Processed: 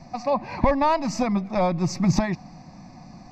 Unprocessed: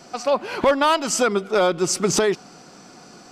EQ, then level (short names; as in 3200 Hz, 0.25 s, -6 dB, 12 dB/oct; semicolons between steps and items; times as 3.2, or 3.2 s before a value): RIAA curve playback; fixed phaser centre 2100 Hz, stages 8; 0.0 dB